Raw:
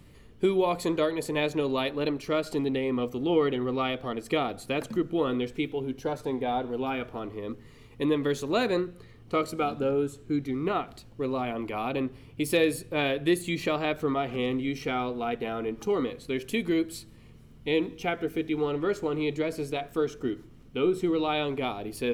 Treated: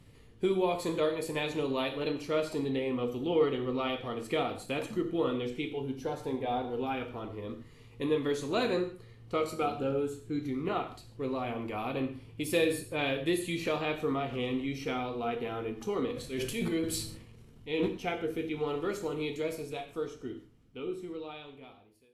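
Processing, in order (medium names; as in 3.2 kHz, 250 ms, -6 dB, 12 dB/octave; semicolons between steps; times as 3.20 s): fade out at the end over 3.47 s; 16.10–17.88 s: transient shaper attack -7 dB, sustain +11 dB; 18.67–19.55 s: treble shelf 7.7 kHz +12 dB; gated-style reverb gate 180 ms falling, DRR 4.5 dB; trim -5 dB; Vorbis 48 kbps 32 kHz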